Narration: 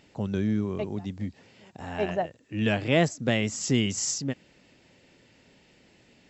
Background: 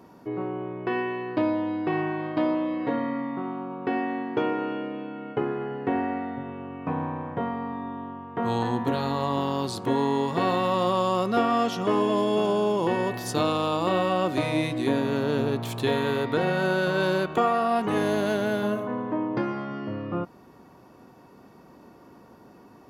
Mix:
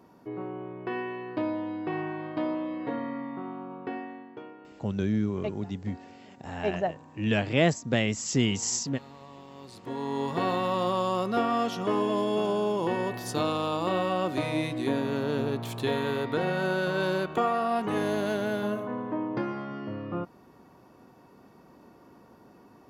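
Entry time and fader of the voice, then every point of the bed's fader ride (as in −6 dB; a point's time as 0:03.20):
4.65 s, −0.5 dB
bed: 0:03.77 −5.5 dB
0:04.58 −21.5 dB
0:09.47 −21.5 dB
0:10.27 −3.5 dB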